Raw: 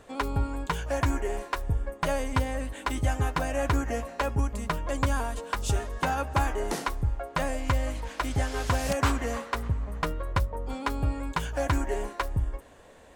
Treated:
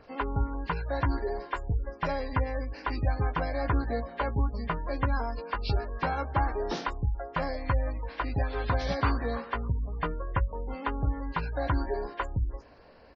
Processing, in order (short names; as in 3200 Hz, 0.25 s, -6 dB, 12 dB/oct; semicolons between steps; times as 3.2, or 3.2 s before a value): nonlinear frequency compression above 1600 Hz 1.5:1; doubler 17 ms -9.5 dB; spectral gate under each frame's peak -30 dB strong; gain -2 dB